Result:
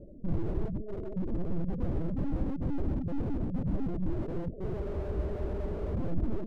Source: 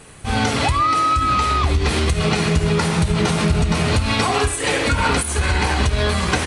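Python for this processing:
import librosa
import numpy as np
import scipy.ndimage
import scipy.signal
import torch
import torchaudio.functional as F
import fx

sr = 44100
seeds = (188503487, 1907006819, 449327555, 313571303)

y = scipy.signal.sosfilt(scipy.signal.cheby1(10, 1.0, 570.0, 'lowpass', fs=sr, output='sos'), x)
y = fx.dereverb_blind(y, sr, rt60_s=0.76)
y = fx.over_compress(y, sr, threshold_db=-22.0, ratio=-0.5)
y = (np.kron(y[::8], np.eye(8)[0]) * 8)[:len(y)]
y = y * np.sin(2.0 * np.pi * 100.0 * np.arange(len(y)) / sr)
y = fx.lpc_vocoder(y, sr, seeds[0], excitation='pitch_kept', order=10)
y = fx.spec_freeze(y, sr, seeds[1], at_s=4.81, hold_s=1.12)
y = fx.slew_limit(y, sr, full_power_hz=6.2)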